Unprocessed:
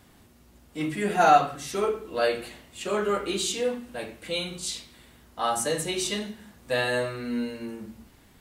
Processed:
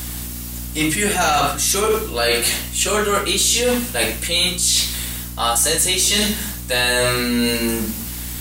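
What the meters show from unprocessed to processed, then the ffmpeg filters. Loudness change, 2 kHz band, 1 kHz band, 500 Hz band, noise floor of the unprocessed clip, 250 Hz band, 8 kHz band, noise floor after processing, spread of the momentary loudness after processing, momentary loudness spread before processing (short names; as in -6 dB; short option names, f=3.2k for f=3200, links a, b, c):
+9.5 dB, +11.0 dB, +3.0 dB, +5.5 dB, -57 dBFS, +9.0 dB, +17.5 dB, -29 dBFS, 10 LU, 17 LU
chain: -af "crystalizer=i=7:c=0,apsyclip=15dB,areverse,acompressor=threshold=-15dB:ratio=10,areverse,aeval=exprs='val(0)+0.0316*(sin(2*PI*60*n/s)+sin(2*PI*2*60*n/s)/2+sin(2*PI*3*60*n/s)/3+sin(2*PI*4*60*n/s)/4+sin(2*PI*5*60*n/s)/5)':c=same"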